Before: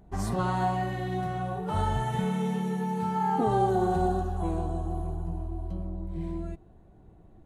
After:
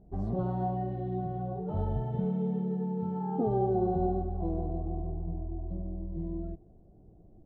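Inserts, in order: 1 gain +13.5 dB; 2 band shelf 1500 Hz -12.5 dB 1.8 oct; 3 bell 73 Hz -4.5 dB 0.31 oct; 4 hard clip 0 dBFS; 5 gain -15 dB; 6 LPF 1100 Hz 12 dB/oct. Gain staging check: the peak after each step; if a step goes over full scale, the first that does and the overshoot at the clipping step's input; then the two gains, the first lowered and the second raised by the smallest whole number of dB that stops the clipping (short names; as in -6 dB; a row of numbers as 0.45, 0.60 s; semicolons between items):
-1.0, -2.5, -2.5, -2.5, -17.5, -17.5 dBFS; no overload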